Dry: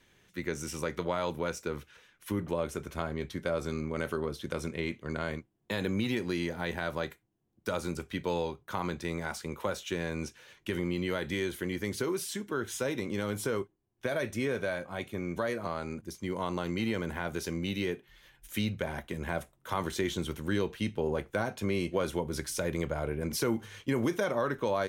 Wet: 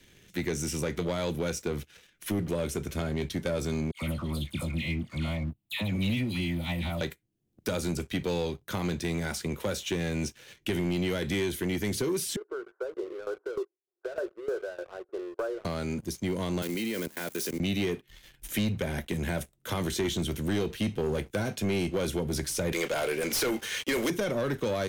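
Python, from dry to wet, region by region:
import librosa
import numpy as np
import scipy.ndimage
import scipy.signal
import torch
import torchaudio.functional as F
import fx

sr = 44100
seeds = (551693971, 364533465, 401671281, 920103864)

y = fx.chain(x, sr, fx.peak_eq(hz=81.0, db=4.5, octaves=0.87),
    fx.fixed_phaser(hz=1600.0, stages=6),
    fx.dispersion(late='lows', ms=106.0, hz=1500.0), at=(3.91, 7.01))
y = fx.chain(y, sr, fx.cheby1_bandpass(low_hz=350.0, high_hz=1500.0, order=5),
    fx.tremolo_shape(shape='saw_down', hz=3.3, depth_pct=85), at=(12.36, 15.65))
y = fx.chain(y, sr, fx.crossing_spikes(level_db=-33.0),
    fx.bessel_highpass(hz=270.0, order=4),
    fx.level_steps(step_db=19), at=(16.62, 17.6))
y = fx.chain(y, sr, fx.highpass(hz=650.0, slope=12),
    fx.leveller(passes=3), at=(22.72, 24.1))
y = fx.peak_eq(y, sr, hz=1000.0, db=-12.5, octaves=1.4)
y = fx.leveller(y, sr, passes=2)
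y = fx.band_squash(y, sr, depth_pct=40)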